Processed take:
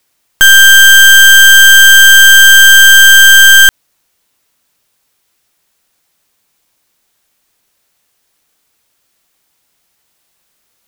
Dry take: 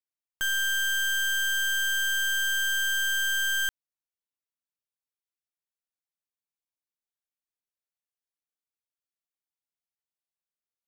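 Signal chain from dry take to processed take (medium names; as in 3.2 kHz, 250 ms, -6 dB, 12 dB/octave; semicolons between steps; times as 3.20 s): loudness maximiser +34.5 dB; trim -1 dB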